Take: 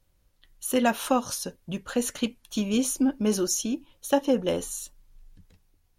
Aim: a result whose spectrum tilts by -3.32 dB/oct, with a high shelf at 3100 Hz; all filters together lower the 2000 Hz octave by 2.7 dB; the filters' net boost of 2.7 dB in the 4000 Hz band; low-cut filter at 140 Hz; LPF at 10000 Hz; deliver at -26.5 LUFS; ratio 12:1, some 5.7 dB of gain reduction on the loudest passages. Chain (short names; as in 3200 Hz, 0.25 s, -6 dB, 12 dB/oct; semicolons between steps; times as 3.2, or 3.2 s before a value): HPF 140 Hz; LPF 10000 Hz; bell 2000 Hz -5 dB; high shelf 3100 Hz -3.5 dB; bell 4000 Hz +9 dB; compressor 12:1, threshold -23 dBFS; gain +4 dB